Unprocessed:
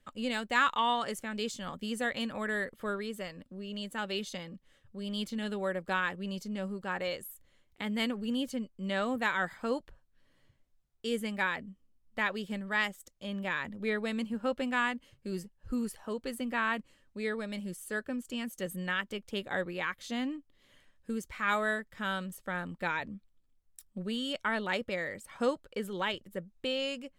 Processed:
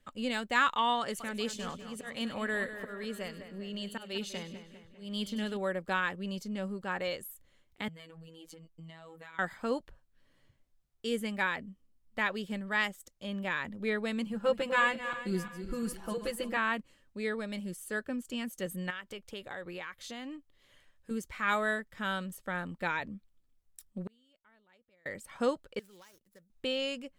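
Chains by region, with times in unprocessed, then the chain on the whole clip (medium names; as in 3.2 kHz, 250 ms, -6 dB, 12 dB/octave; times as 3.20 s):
1.00–5.57 s: slow attack 225 ms + two-band feedback delay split 2.8 kHz, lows 200 ms, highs 99 ms, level -10.5 dB
7.88–9.39 s: compression 8:1, threshold -43 dBFS + robot voice 163 Hz
14.26–16.57 s: backward echo that repeats 174 ms, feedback 57%, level -10 dB + comb 5.9 ms, depth 85%
18.90–21.11 s: peaking EQ 230 Hz -6.5 dB 1 oct + compression 4:1, threshold -38 dBFS
24.07–25.06 s: inverted gate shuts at -36 dBFS, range -34 dB + transformer saturation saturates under 730 Hz
25.79–26.50 s: median filter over 15 samples + pre-emphasis filter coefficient 0.9 + compression 10:1, threshold -51 dBFS
whole clip: none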